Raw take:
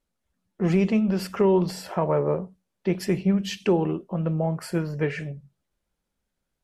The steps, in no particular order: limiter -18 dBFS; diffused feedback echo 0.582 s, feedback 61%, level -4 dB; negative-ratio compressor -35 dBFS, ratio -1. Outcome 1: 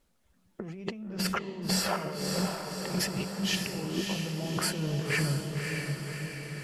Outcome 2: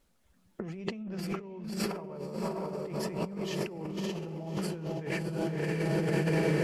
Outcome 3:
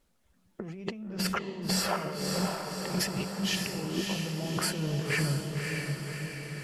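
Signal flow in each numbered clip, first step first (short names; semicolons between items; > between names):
negative-ratio compressor > limiter > diffused feedback echo; diffused feedback echo > negative-ratio compressor > limiter; negative-ratio compressor > diffused feedback echo > limiter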